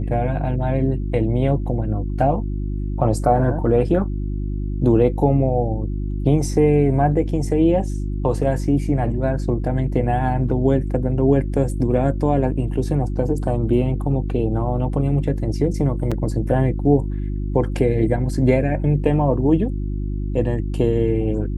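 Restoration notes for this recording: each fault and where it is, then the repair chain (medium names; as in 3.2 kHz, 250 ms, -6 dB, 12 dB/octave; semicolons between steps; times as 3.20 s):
hum 50 Hz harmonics 7 -24 dBFS
16.11–16.12 s: dropout 5.7 ms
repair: de-hum 50 Hz, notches 7; interpolate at 16.11 s, 5.7 ms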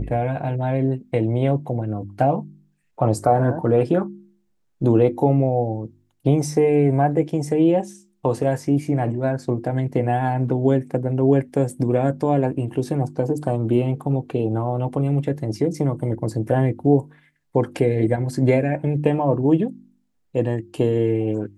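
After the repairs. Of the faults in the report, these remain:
nothing left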